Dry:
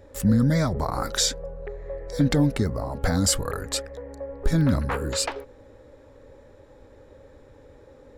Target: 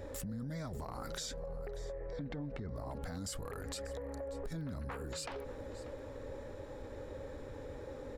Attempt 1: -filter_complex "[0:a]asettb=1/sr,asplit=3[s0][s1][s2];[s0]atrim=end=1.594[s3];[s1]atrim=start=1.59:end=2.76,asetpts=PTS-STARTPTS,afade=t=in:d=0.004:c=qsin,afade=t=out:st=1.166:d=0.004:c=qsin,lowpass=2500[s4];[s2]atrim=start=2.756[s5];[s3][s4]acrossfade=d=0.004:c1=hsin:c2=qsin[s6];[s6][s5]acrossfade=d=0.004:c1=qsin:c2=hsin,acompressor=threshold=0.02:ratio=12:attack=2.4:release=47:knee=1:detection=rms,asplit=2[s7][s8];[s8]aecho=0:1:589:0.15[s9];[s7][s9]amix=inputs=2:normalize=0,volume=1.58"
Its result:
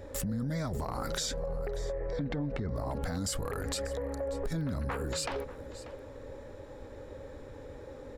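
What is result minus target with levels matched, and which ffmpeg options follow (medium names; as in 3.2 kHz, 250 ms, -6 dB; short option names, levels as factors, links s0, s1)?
compression: peak gain reduction -8 dB
-filter_complex "[0:a]asettb=1/sr,asplit=3[s0][s1][s2];[s0]atrim=end=1.594[s3];[s1]atrim=start=1.59:end=2.76,asetpts=PTS-STARTPTS,afade=t=in:d=0.004:c=qsin,afade=t=out:st=1.166:d=0.004:c=qsin,lowpass=2500[s4];[s2]atrim=start=2.756[s5];[s3][s4]acrossfade=d=0.004:c1=hsin:c2=qsin[s6];[s6][s5]acrossfade=d=0.004:c1=qsin:c2=hsin,acompressor=threshold=0.0075:ratio=12:attack=2.4:release=47:knee=1:detection=rms,asplit=2[s7][s8];[s8]aecho=0:1:589:0.15[s9];[s7][s9]amix=inputs=2:normalize=0,volume=1.58"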